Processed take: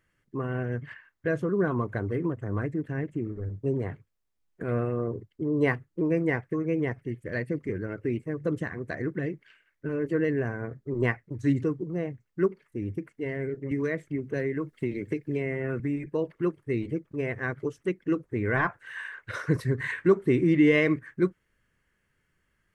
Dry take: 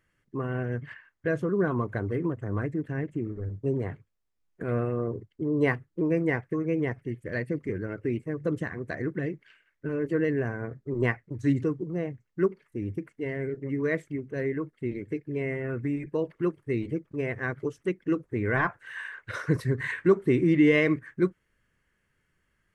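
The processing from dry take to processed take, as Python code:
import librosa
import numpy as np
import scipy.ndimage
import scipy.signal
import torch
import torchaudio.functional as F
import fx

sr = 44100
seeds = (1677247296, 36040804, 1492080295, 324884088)

y = fx.band_squash(x, sr, depth_pct=100, at=(13.71, 15.8))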